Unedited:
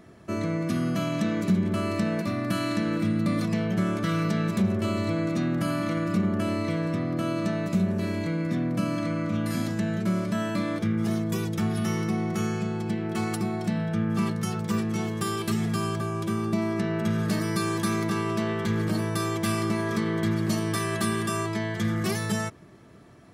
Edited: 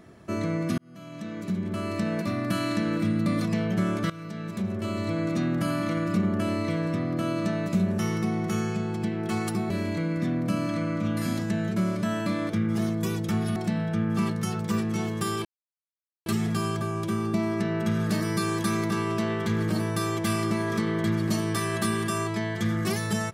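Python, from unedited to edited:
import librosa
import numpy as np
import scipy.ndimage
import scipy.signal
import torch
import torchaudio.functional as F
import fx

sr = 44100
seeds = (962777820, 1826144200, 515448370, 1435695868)

y = fx.edit(x, sr, fx.fade_in_span(start_s=0.78, length_s=1.52),
    fx.fade_in_from(start_s=4.1, length_s=1.24, floor_db=-17.0),
    fx.move(start_s=11.85, length_s=1.71, to_s=7.99),
    fx.insert_silence(at_s=15.45, length_s=0.81), tone=tone)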